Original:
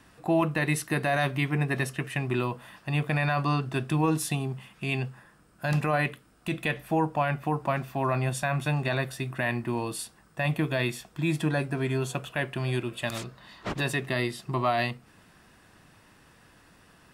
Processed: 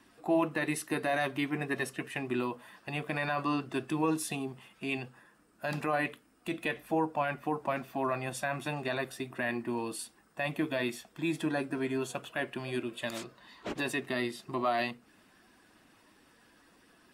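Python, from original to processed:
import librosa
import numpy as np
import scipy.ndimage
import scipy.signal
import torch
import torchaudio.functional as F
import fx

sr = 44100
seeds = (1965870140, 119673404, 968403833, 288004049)

y = fx.spec_quant(x, sr, step_db=15)
y = fx.low_shelf_res(y, sr, hz=190.0, db=-8.0, q=1.5)
y = F.gain(torch.from_numpy(y), -4.0).numpy()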